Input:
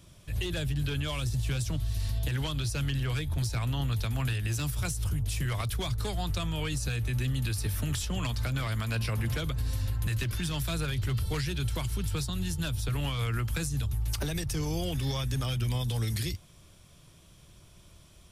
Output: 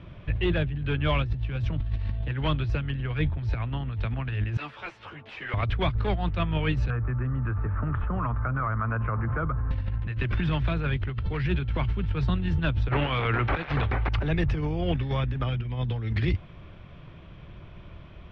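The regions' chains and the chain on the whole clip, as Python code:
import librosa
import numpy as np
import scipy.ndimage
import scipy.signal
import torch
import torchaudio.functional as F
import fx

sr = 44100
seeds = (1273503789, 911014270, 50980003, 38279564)

y = fx.chain(x, sr, fx.highpass(hz=530.0, slope=12),
    fx.clip_hard(threshold_db=-37.0),
    fx.ensemble(), at=(4.57, 5.54))
y = fx.chain(y, sr, fx.ladder_lowpass(hz=1400.0, resonance_pct=65),
    fx.env_flatten(amount_pct=100), at=(6.9, 9.71))
y = fx.chain(y, sr, fx.bass_treble(bass_db=-9, treble_db=9),
    fx.over_compress(threshold_db=-35.0, ratio=-0.5),
    fx.resample_linear(factor=4), at=(12.91, 14.09))
y = scipy.signal.sosfilt(scipy.signal.butter(4, 2600.0, 'lowpass', fs=sr, output='sos'), y)
y = fx.over_compress(y, sr, threshold_db=-33.0, ratio=-0.5)
y = y * librosa.db_to_amplitude(8.0)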